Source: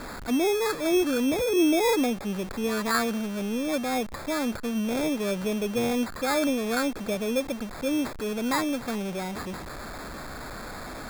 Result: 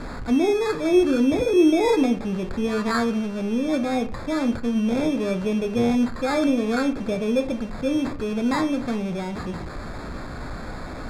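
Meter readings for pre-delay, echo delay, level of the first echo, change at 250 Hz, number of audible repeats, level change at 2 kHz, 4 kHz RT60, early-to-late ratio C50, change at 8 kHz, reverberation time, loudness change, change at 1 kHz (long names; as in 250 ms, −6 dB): 10 ms, no echo audible, no echo audible, +5.5 dB, no echo audible, 0.0 dB, 0.25 s, 14.0 dB, −5.5 dB, 0.40 s, +4.0 dB, +1.5 dB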